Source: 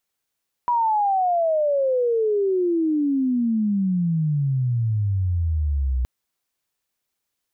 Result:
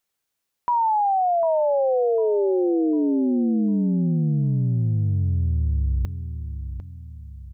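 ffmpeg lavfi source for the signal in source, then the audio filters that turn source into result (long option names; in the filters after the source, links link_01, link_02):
-f lavfi -i "aevalsrc='pow(10,(-17-2*t/5.37)/20)*sin(2*PI*980*5.37/log(61/980)*(exp(log(61/980)*t/5.37)-1))':duration=5.37:sample_rate=44100"
-filter_complex "[0:a]asplit=2[link_01][link_02];[link_02]adelay=750,lowpass=frequency=1200:poles=1,volume=-9.5dB,asplit=2[link_03][link_04];[link_04]adelay=750,lowpass=frequency=1200:poles=1,volume=0.42,asplit=2[link_05][link_06];[link_06]adelay=750,lowpass=frequency=1200:poles=1,volume=0.42,asplit=2[link_07][link_08];[link_08]adelay=750,lowpass=frequency=1200:poles=1,volume=0.42,asplit=2[link_09][link_10];[link_10]adelay=750,lowpass=frequency=1200:poles=1,volume=0.42[link_11];[link_01][link_03][link_05][link_07][link_09][link_11]amix=inputs=6:normalize=0"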